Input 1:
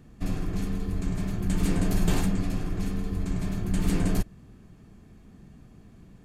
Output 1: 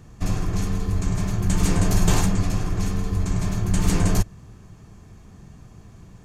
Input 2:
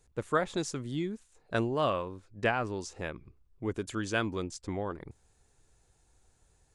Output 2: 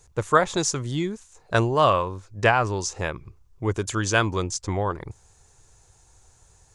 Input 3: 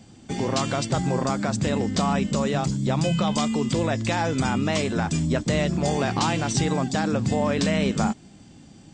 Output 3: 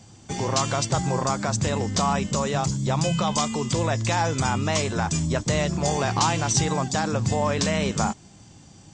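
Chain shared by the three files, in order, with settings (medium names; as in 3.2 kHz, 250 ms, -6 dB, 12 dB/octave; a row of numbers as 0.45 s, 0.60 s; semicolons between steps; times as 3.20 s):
fifteen-band graphic EQ 100 Hz +5 dB, 250 Hz -6 dB, 1 kHz +5 dB, 6.3 kHz +8 dB; normalise loudness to -24 LUFS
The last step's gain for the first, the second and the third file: +5.0 dB, +8.5 dB, -0.5 dB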